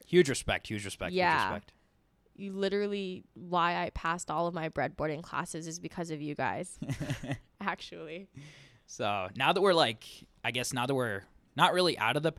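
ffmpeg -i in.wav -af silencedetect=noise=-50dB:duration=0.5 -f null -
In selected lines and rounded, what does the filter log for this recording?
silence_start: 1.70
silence_end: 2.36 | silence_duration: 0.66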